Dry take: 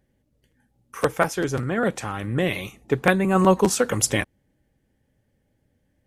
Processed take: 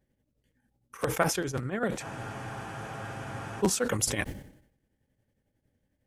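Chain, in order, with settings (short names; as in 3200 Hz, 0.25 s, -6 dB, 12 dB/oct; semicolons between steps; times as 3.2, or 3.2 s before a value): tremolo triangle 11 Hz, depth 85%; spectral freeze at 2.04, 1.56 s; sustainer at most 84 dB/s; gain -4 dB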